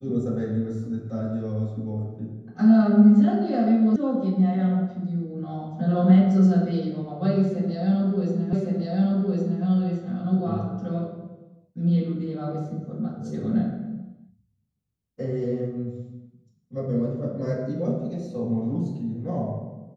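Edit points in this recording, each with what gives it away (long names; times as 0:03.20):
0:03.96: cut off before it has died away
0:08.53: the same again, the last 1.11 s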